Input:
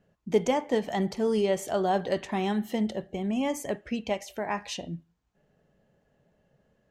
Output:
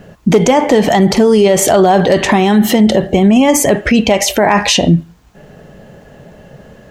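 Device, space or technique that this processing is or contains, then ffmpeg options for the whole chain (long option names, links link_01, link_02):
loud club master: -af "acompressor=threshold=-28dB:ratio=2.5,asoftclip=type=hard:threshold=-22dB,alimiter=level_in=31dB:limit=-1dB:release=50:level=0:latency=1,volume=-1dB"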